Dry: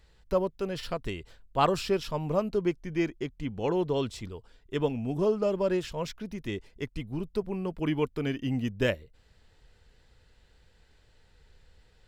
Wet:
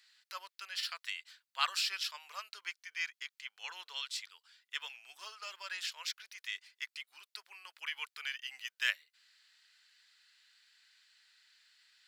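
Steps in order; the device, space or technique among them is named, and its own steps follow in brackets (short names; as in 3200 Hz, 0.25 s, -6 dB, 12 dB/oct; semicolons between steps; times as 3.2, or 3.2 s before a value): headphones lying on a table (HPF 1500 Hz 24 dB/oct; bell 4500 Hz +5 dB 0.44 oct); gain +2 dB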